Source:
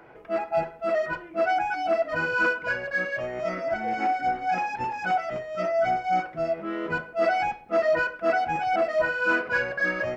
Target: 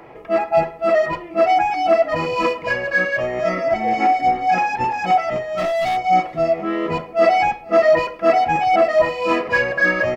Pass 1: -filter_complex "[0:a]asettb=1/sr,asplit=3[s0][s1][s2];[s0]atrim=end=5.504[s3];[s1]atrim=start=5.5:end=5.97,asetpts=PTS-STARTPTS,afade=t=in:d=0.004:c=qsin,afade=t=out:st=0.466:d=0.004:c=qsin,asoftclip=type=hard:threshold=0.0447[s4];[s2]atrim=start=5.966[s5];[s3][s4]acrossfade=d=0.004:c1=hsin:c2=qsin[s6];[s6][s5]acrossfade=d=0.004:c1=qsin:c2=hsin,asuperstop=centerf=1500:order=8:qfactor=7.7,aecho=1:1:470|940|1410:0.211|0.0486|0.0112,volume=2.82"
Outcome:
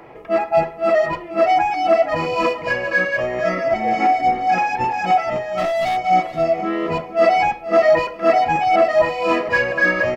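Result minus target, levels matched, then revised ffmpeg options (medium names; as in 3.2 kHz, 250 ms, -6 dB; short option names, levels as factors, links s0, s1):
echo-to-direct +10 dB
-filter_complex "[0:a]asettb=1/sr,asplit=3[s0][s1][s2];[s0]atrim=end=5.504[s3];[s1]atrim=start=5.5:end=5.97,asetpts=PTS-STARTPTS,afade=t=in:d=0.004:c=qsin,afade=t=out:st=0.466:d=0.004:c=qsin,asoftclip=type=hard:threshold=0.0447[s4];[s2]atrim=start=5.966[s5];[s3][s4]acrossfade=d=0.004:c1=hsin:c2=qsin[s6];[s6][s5]acrossfade=d=0.004:c1=qsin:c2=hsin,asuperstop=centerf=1500:order=8:qfactor=7.7,aecho=1:1:470|940:0.0668|0.0154,volume=2.82"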